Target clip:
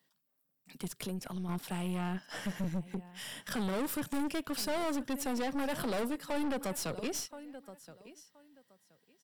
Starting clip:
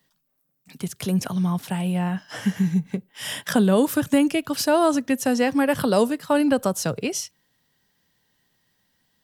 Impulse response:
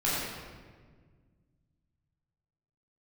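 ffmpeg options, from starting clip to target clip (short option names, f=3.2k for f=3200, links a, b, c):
-filter_complex "[0:a]asettb=1/sr,asplit=3[a][b][c];[a]atrim=end=1.024[d];[b]atrim=start=1.02:end=1.49,asetpts=PTS-STARTPTS,afade=t=in:d=0.004:c=qsin,afade=t=out:st=0.466:d=0.004:c=qsin,acompressor=threshold=-28dB:ratio=4[e];[c]atrim=start=1.486[f];[d][e]acrossfade=d=0.004:c1=hsin:c2=qsin[g];[g][f]acrossfade=d=0.004:c1=qsin:c2=hsin,highpass=170,asettb=1/sr,asplit=3[h][i][j];[h]atrim=end=2.644[k];[i]atrim=start=2.64:end=3.51,asetpts=PTS-STARTPTS,afade=t=in:d=0.004:c=qsin,afade=t=out:st=0.866:d=0.004:c=qsin,acrossover=split=330[l][m];[m]acompressor=threshold=-35dB:ratio=6[n];[l][n]amix=inputs=2:normalize=0[o];[j]atrim=start=3.506[p];[k][o]acrossfade=d=0.004:c1=hsin:c2=qsin[q];[q][p]acrossfade=d=0.004:c1=qsin:c2=hsin,aecho=1:1:1024|2048:0.0891|0.0169,aeval=exprs='(tanh(22.4*val(0)+0.5)-tanh(0.5))/22.4':c=same,bandreject=f=6.4k:w=12,volume=-4.5dB"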